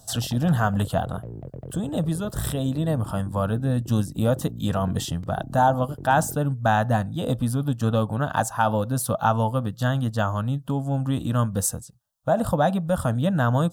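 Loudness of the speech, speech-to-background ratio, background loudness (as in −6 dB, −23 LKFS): −24.5 LKFS, 15.0 dB, −39.5 LKFS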